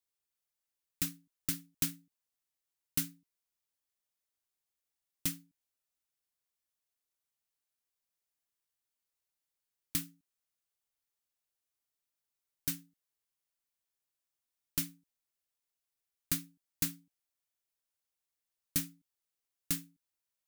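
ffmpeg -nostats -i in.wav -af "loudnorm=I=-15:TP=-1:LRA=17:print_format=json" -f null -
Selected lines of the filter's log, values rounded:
"input_i" : "-36.9",
"input_tp" : "-14.1",
"input_lra" : "6.6",
"input_thresh" : "-47.7",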